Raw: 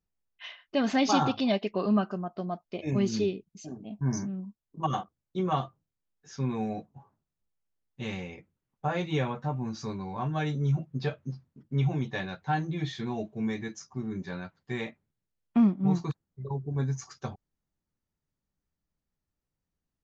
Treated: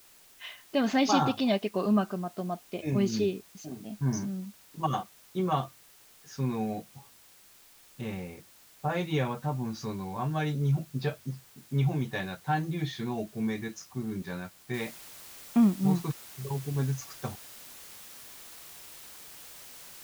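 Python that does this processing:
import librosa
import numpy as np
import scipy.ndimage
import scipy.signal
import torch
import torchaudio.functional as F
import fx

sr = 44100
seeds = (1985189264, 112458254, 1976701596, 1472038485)

y = fx.high_shelf(x, sr, hz=2400.0, db=-12.0, at=(8.01, 8.9))
y = fx.noise_floor_step(y, sr, seeds[0], at_s=14.74, before_db=-57, after_db=-48, tilt_db=0.0)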